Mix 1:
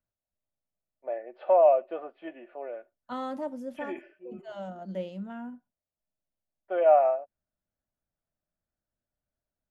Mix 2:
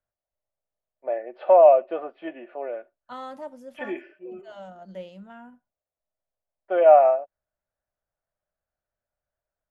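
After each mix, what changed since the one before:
first voice +6.0 dB; second voice: add peaking EQ 260 Hz -8.5 dB 1.6 oct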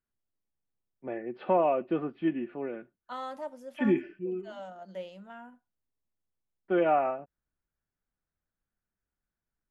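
first voice: remove resonant high-pass 610 Hz, resonance Q 6; second voice: add bass shelf 180 Hz -12 dB

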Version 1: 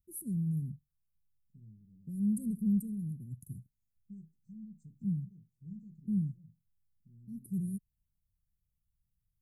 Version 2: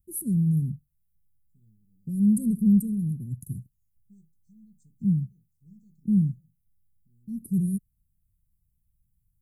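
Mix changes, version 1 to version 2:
first voice +10.0 dB; second voice: add tilt shelf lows -7.5 dB, about 720 Hz

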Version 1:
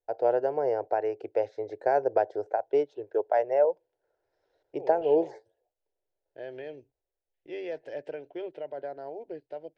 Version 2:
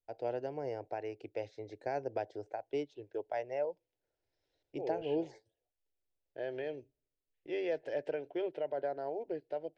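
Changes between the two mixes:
first voice: add high-order bell 790 Hz -12.5 dB 2.5 oct; reverb: on

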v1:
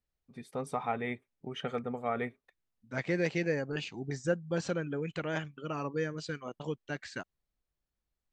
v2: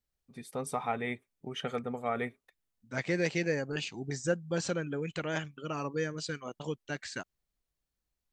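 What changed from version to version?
master: remove low-pass 3.1 kHz 6 dB/octave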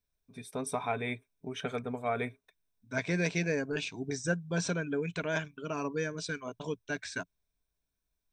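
master: add rippled EQ curve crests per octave 1.6, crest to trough 9 dB

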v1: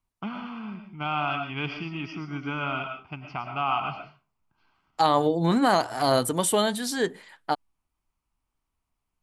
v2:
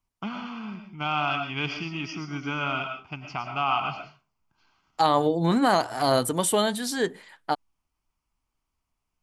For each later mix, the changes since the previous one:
first voice: remove distance through air 200 m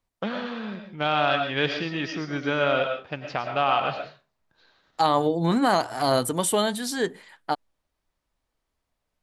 first voice: remove static phaser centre 2.6 kHz, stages 8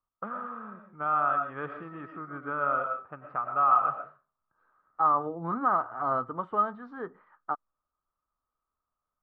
master: add four-pole ladder low-pass 1.3 kHz, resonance 85%

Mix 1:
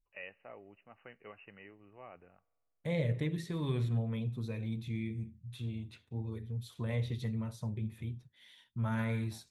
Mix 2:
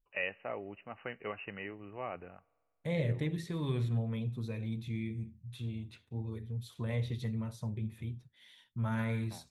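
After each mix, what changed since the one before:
first voice +11.0 dB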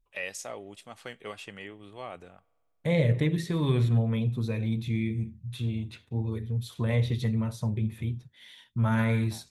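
first voice: remove brick-wall FIR low-pass 3 kHz; second voice +8.5 dB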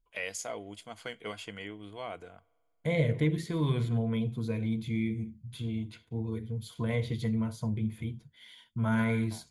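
second voice -3.5 dB; master: add rippled EQ curve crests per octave 1.8, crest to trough 8 dB

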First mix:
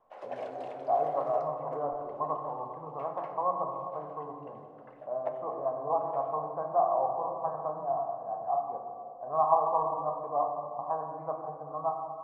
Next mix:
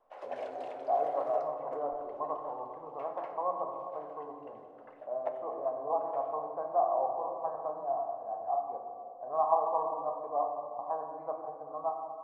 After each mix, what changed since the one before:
speech: add peaking EQ 1.2 kHz -5 dB 0.99 oct; master: add peaking EQ 150 Hz -14.5 dB 0.9 oct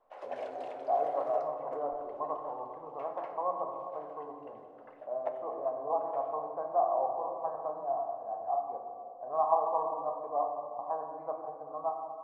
no change

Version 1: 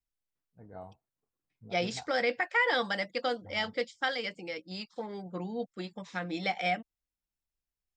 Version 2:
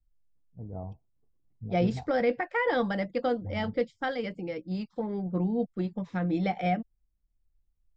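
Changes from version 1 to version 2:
first voice: add Savitzky-Golay filter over 65 samples; master: add tilt EQ -4.5 dB/octave

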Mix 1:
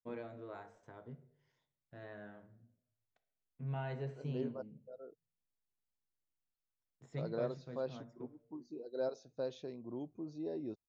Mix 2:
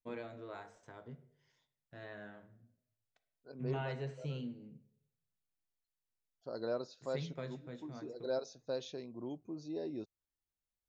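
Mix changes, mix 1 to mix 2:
second voice: entry -0.70 s; master: add treble shelf 2.1 kHz +9.5 dB

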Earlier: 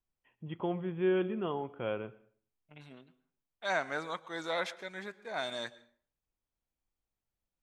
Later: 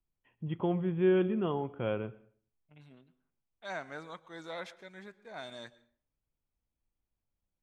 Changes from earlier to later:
second voice -8.5 dB; master: add bass shelf 250 Hz +9 dB

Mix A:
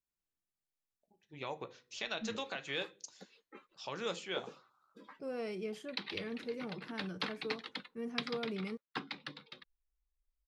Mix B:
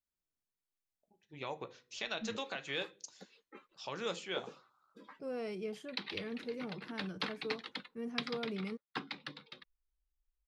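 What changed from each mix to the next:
second voice: send off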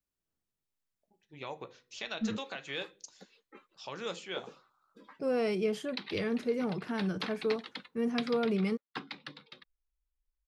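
second voice +10.0 dB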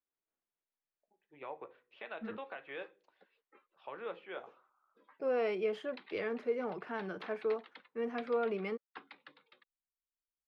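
first voice: add distance through air 460 m; background -8.0 dB; master: add three-band isolator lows -18 dB, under 330 Hz, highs -21 dB, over 3.2 kHz

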